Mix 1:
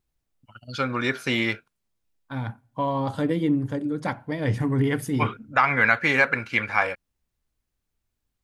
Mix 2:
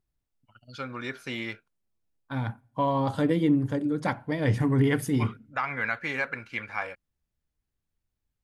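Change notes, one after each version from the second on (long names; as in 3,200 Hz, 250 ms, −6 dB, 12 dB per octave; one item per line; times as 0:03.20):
first voice −10.0 dB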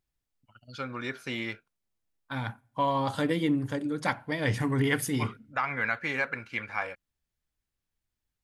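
second voice: add tilt shelving filter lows −5 dB, about 930 Hz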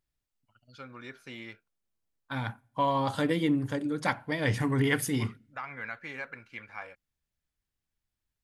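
first voice −9.5 dB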